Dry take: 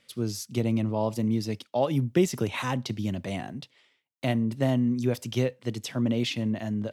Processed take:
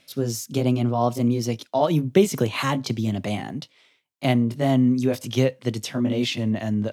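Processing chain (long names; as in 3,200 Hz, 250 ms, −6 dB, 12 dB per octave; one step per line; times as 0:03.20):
pitch glide at a constant tempo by +2 semitones ending unshifted
level +6.5 dB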